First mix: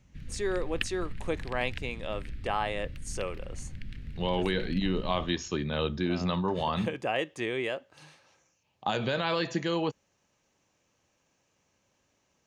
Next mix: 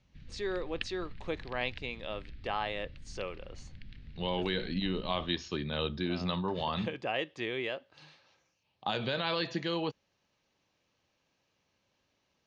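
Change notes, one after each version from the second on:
speech +4.0 dB; master: add four-pole ladder low-pass 5.2 kHz, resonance 40%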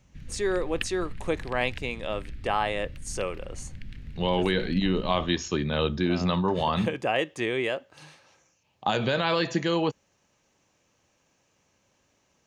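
master: remove four-pole ladder low-pass 5.2 kHz, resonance 40%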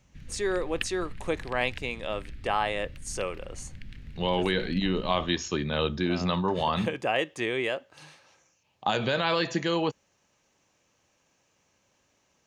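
master: add bass shelf 460 Hz -3 dB

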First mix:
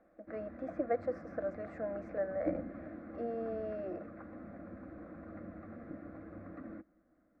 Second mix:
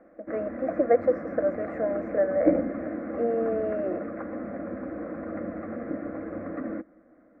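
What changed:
background +4.5 dB; master: add ten-band graphic EQ 250 Hz +7 dB, 500 Hz +11 dB, 1 kHz +5 dB, 2 kHz +9 dB, 4 kHz -4 dB

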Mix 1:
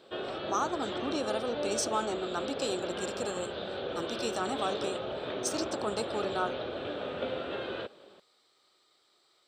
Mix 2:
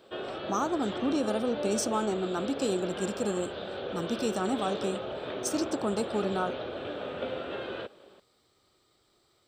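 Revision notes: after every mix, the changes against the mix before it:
speech: remove frequency weighting A; master: add peaking EQ 4 kHz -3 dB 0.44 oct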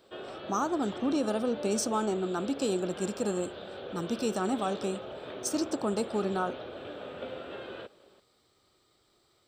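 background -5.0 dB

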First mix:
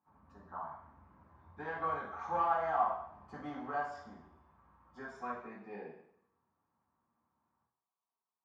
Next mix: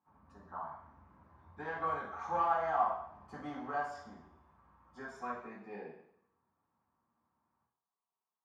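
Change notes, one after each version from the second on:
master: remove distance through air 60 m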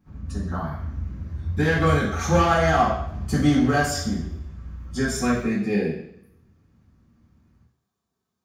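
speech +3.5 dB; master: remove band-pass filter 940 Hz, Q 4.3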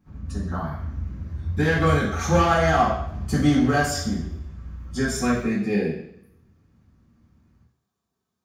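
no change

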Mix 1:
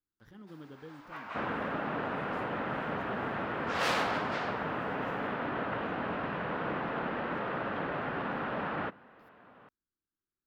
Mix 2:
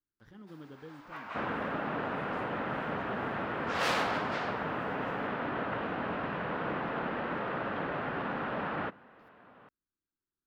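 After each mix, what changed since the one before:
speech: add treble shelf 9.2 kHz -9.5 dB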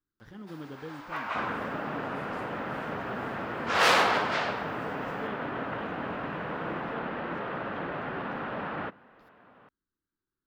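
speech +6.5 dB; first sound +9.0 dB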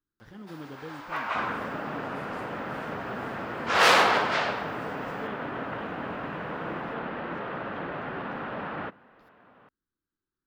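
first sound +3.0 dB

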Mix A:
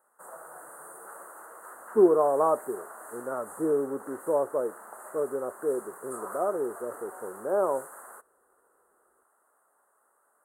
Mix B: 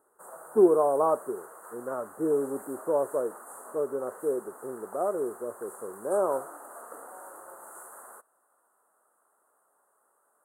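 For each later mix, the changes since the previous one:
speech: entry -1.40 s; master: add peaking EQ 2 kHz -5.5 dB 1 oct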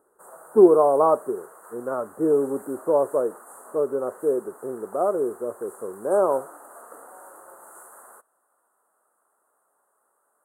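speech +6.0 dB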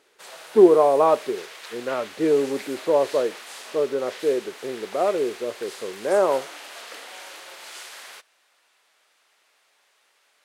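master: remove elliptic band-stop 1.3–8.7 kHz, stop band 40 dB

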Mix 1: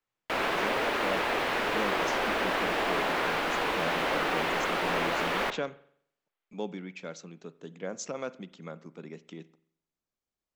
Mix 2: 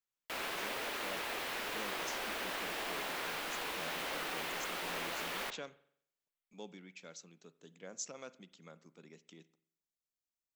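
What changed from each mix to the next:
master: add pre-emphasis filter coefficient 0.8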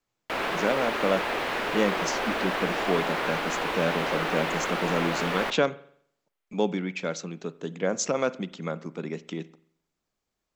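speech +10.0 dB; master: remove pre-emphasis filter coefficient 0.8

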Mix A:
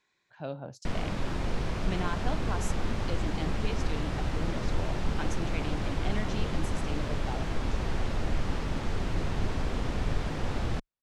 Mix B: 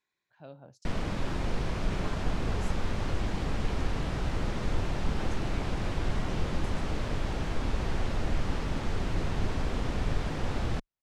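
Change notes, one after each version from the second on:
speech -10.5 dB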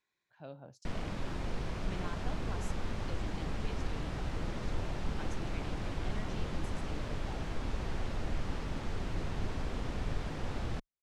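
background -6.0 dB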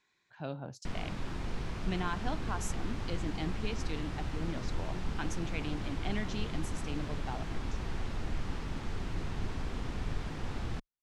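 speech +10.5 dB; master: add peaking EQ 570 Hz -5 dB 0.61 oct

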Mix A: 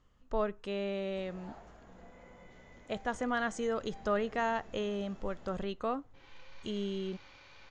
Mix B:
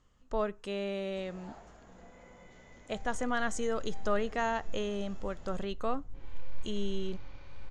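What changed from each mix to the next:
second sound: add tilt EQ -4 dB/octave; master: remove distance through air 77 m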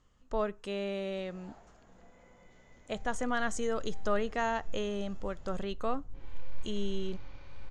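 first sound -5.0 dB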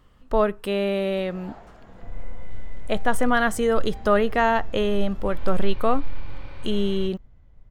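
second sound: entry -0.90 s; master: remove four-pole ladder low-pass 7.3 kHz, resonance 70%

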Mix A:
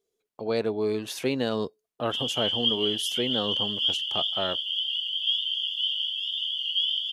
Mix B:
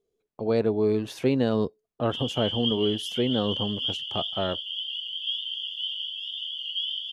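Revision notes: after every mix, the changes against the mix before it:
master: add tilt EQ -2.5 dB/octave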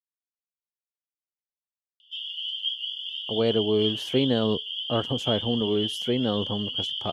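speech: entry +2.90 s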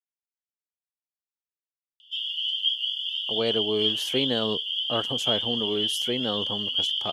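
master: add tilt EQ +2.5 dB/octave

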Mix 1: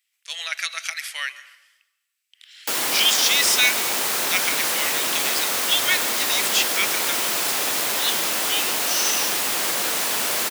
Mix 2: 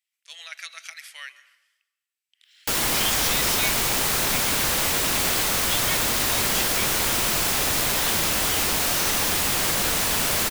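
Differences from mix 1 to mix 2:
speech -10.5 dB; master: remove high-pass 300 Hz 12 dB/octave

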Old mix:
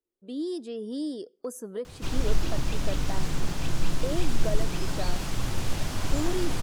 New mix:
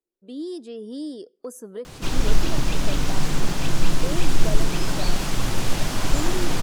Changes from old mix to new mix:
background +7.0 dB; master: add peaking EQ 71 Hz -10 dB 0.9 oct

